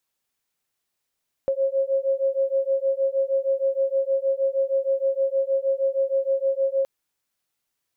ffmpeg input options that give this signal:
ffmpeg -f lavfi -i "aevalsrc='0.0708*(sin(2*PI*538*t)+sin(2*PI*544.4*t))':duration=5.37:sample_rate=44100" out.wav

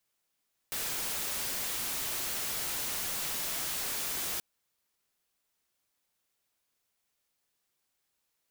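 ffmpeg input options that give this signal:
ffmpeg -f lavfi -i "anoisesrc=color=white:amplitude=0.0326:duration=3.68:sample_rate=44100:seed=1" out.wav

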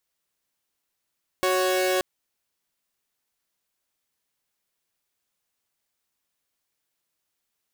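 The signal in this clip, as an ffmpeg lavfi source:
ffmpeg -f lavfi -i "aevalsrc='0.0891*((2*mod(369.99*t,1)-1)+(2*mod(554.37*t,1)-1))':duration=0.58:sample_rate=44100" out.wav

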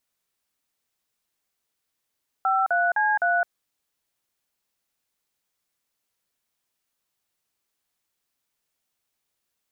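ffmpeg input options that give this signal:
ffmpeg -f lavfi -i "aevalsrc='0.0841*clip(min(mod(t,0.256),0.213-mod(t,0.256))/0.002,0,1)*(eq(floor(t/0.256),0)*(sin(2*PI*770*mod(t,0.256))+sin(2*PI*1336*mod(t,0.256)))+eq(floor(t/0.256),1)*(sin(2*PI*697*mod(t,0.256))+sin(2*PI*1477*mod(t,0.256)))+eq(floor(t/0.256),2)*(sin(2*PI*852*mod(t,0.256))+sin(2*PI*1633*mod(t,0.256)))+eq(floor(t/0.256),3)*(sin(2*PI*697*mod(t,0.256))+sin(2*PI*1477*mod(t,0.256))))':duration=1.024:sample_rate=44100" out.wav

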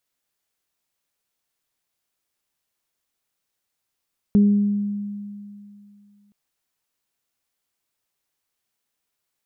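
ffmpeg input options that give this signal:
ffmpeg -f lavfi -i "aevalsrc='0.299*pow(10,-3*t/2.58)*sin(2*PI*204*t)+0.0531*pow(10,-3*t/0.89)*sin(2*PI*408*t)':duration=1.97:sample_rate=44100" out.wav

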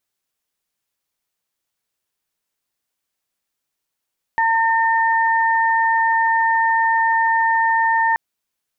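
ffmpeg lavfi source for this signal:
ffmpeg -f lavfi -i "aevalsrc='0.168*sin(2*PI*907*t)+0.119*sin(2*PI*1814*t)':duration=3.78:sample_rate=44100" out.wav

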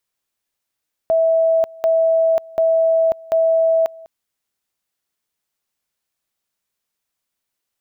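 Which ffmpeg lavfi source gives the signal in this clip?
ffmpeg -f lavfi -i "aevalsrc='pow(10,(-12-23.5*gte(mod(t,0.74),0.54))/20)*sin(2*PI*653*t)':duration=2.96:sample_rate=44100" out.wav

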